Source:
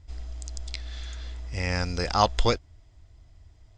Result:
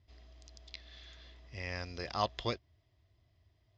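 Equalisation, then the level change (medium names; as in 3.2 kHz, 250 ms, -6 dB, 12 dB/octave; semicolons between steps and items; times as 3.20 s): distance through air 150 m; cabinet simulation 140–6400 Hz, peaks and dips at 180 Hz -10 dB, 280 Hz -8 dB, 480 Hz -8 dB, 840 Hz -10 dB, 1.4 kHz -10 dB, 2.3 kHz -3 dB; -5.0 dB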